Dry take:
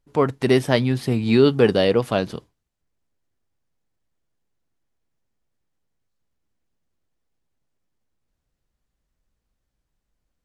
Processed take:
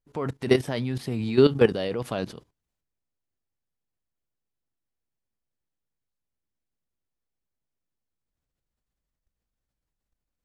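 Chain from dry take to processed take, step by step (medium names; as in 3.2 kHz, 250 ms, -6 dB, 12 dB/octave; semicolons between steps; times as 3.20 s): level held to a coarse grid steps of 14 dB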